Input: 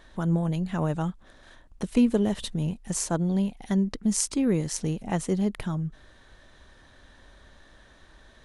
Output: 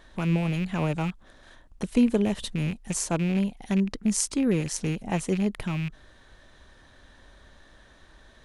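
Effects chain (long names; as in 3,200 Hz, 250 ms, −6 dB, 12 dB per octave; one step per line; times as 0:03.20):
loose part that buzzes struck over −30 dBFS, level −28 dBFS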